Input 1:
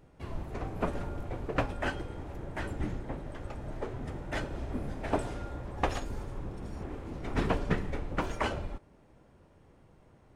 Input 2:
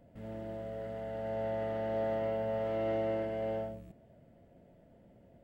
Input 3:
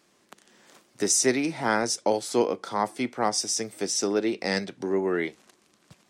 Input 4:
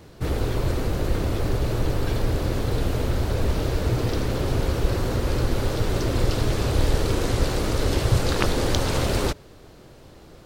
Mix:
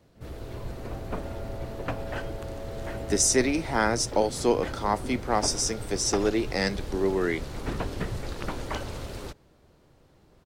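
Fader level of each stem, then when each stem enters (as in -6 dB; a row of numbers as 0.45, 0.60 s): -3.0, -7.5, 0.0, -15.0 dB; 0.30, 0.00, 2.10, 0.00 s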